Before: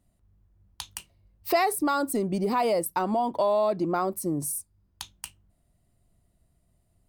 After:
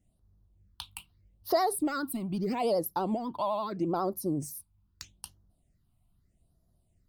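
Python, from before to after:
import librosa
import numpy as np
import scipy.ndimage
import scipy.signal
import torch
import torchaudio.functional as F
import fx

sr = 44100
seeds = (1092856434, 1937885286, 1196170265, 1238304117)

y = fx.vibrato(x, sr, rate_hz=12.0, depth_cents=75.0)
y = fx.phaser_stages(y, sr, stages=6, low_hz=450.0, high_hz=2600.0, hz=0.79, feedback_pct=5)
y = y * 10.0 ** (-2.0 / 20.0)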